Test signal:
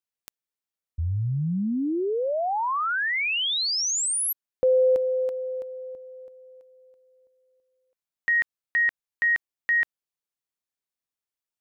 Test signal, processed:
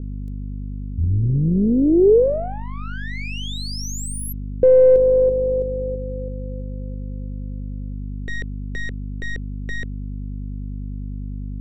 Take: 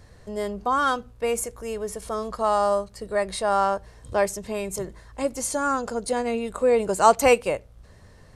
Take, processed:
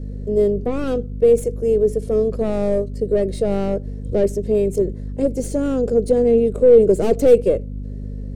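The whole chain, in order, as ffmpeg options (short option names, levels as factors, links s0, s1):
-af "aeval=exprs='val(0)+0.0178*(sin(2*PI*50*n/s)+sin(2*PI*2*50*n/s)/2+sin(2*PI*3*50*n/s)/3+sin(2*PI*4*50*n/s)/4+sin(2*PI*5*50*n/s)/5)':c=same,aeval=exprs='(tanh(10*val(0)+0.45)-tanh(0.45))/10':c=same,lowshelf=f=660:t=q:w=3:g=13.5,volume=0.596"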